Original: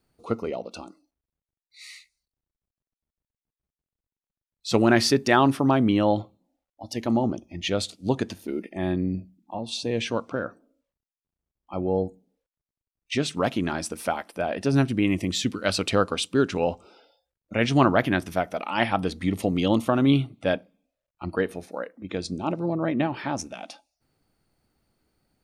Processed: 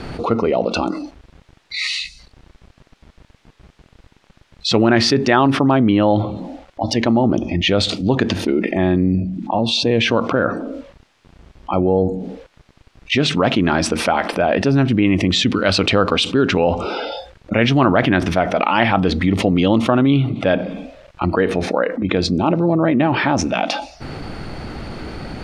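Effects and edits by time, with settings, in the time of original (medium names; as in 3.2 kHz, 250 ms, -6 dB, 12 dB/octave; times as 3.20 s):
1.88–2.19 s: time-frequency box 260–2500 Hz -13 dB
whole clip: low-pass 3.6 kHz 12 dB/octave; level flattener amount 70%; trim +3 dB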